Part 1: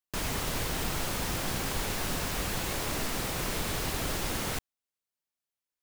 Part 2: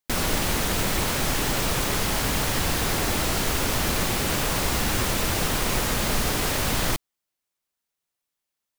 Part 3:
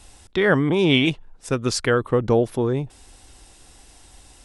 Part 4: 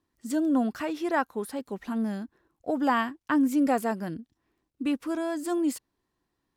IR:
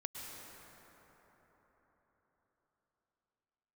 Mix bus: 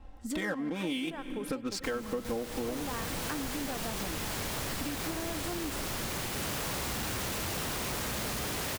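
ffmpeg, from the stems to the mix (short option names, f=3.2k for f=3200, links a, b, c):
-filter_complex "[0:a]adelay=1700,volume=-3.5dB[a];[1:a]highpass=52,asoftclip=type=hard:threshold=-26dB,adelay=2150,volume=-4.5dB[b];[2:a]aecho=1:1:3.8:0.9,adynamicsmooth=sensitivity=5:basefreq=1.2k,volume=-5.5dB,asplit=2[c][d];[d]volume=-12.5dB[e];[3:a]acompressor=threshold=-28dB:ratio=6,volume=-1dB[f];[4:a]atrim=start_sample=2205[g];[e][g]afir=irnorm=-1:irlink=0[h];[a][b][c][f][h]amix=inputs=5:normalize=0,acompressor=threshold=-32dB:ratio=6"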